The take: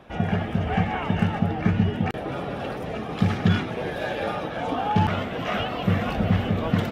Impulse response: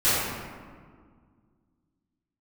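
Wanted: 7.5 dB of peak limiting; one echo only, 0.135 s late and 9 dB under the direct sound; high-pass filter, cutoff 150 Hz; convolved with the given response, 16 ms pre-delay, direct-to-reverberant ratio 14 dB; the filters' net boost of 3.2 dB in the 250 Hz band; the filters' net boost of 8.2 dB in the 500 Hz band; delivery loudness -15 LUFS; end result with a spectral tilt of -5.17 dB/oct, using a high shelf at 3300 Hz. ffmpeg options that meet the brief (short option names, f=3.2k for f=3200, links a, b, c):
-filter_complex "[0:a]highpass=150,equalizer=f=250:t=o:g=4,equalizer=f=500:t=o:g=9,highshelf=f=3.3k:g=5,alimiter=limit=-13.5dB:level=0:latency=1,aecho=1:1:135:0.355,asplit=2[a][b];[1:a]atrim=start_sample=2205,adelay=16[c];[b][c]afir=irnorm=-1:irlink=0,volume=-31.5dB[d];[a][d]amix=inputs=2:normalize=0,volume=8dB"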